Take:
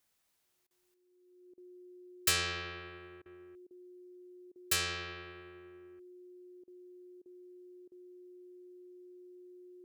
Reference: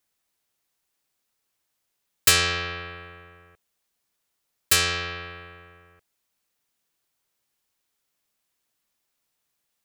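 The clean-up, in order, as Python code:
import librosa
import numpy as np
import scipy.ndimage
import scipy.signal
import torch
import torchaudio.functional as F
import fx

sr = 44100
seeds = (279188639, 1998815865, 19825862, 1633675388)

y = fx.notch(x, sr, hz=360.0, q=30.0)
y = fx.fix_interpolate(y, sr, at_s=(0.67, 1.54, 3.22, 3.67, 4.52, 6.64, 7.22, 7.88), length_ms=36.0)
y = fx.fix_level(y, sr, at_s=0.94, step_db=11.5)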